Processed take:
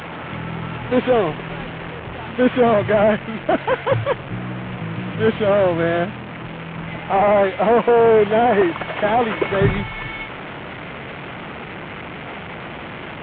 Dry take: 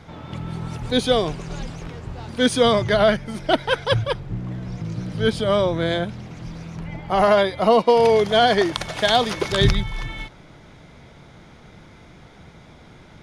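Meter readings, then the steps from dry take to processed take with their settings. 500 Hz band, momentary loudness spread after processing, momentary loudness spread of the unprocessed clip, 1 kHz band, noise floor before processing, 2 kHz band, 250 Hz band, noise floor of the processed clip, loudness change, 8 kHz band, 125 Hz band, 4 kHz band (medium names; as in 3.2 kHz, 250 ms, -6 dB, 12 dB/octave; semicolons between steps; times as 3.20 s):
+2.5 dB, 17 LU, 18 LU, +2.0 dB, -47 dBFS, +2.0 dB, +2.5 dB, -33 dBFS, +1.5 dB, under -35 dB, +0.5 dB, -8.5 dB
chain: one-bit delta coder 16 kbps, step -29 dBFS; high-pass 200 Hz 6 dB/octave; trim +5.5 dB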